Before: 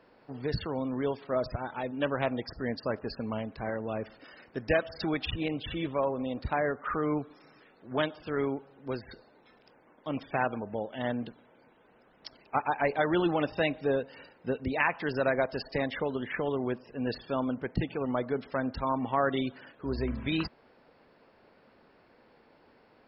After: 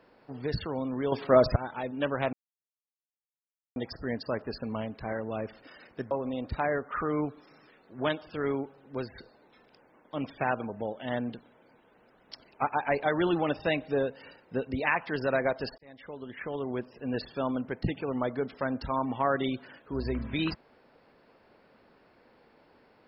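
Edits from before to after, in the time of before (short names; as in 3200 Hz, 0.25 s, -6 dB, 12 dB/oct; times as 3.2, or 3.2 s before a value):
1.12–1.56 gain +9.5 dB
2.33 insert silence 1.43 s
4.68–6.04 cut
15.71–16.91 fade in linear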